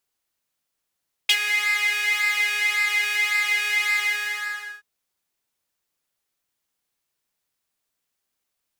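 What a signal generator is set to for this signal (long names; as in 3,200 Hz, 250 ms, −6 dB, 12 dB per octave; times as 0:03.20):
subtractive patch with pulse-width modulation G#4, oscillator 2 saw, detune 26 cents, filter highpass, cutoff 1,600 Hz, Q 6.6, filter envelope 1 octave, filter decay 0.06 s, attack 7 ms, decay 0.06 s, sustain −11 dB, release 0.86 s, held 2.67 s, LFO 1.8 Hz, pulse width 27%, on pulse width 14%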